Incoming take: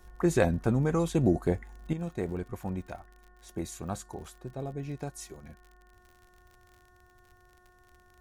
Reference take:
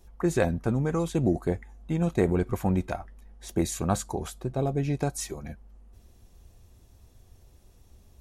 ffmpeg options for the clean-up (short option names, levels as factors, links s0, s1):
-af "adeclick=t=4,bandreject=f=361.4:t=h:w=4,bandreject=f=722.8:t=h:w=4,bandreject=f=1084.2:t=h:w=4,bandreject=f=1445.6:t=h:w=4,bandreject=f=1807:t=h:w=4,asetnsamples=n=441:p=0,asendcmd='1.93 volume volume 9.5dB',volume=1"